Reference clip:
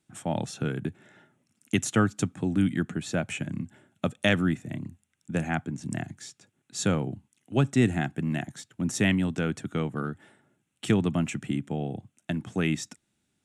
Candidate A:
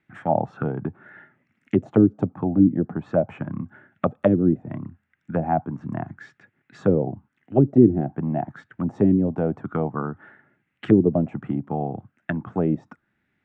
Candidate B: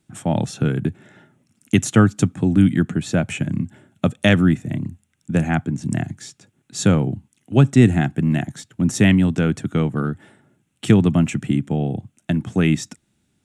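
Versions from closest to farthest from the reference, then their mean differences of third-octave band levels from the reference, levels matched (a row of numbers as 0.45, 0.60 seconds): B, A; 2.5, 7.5 decibels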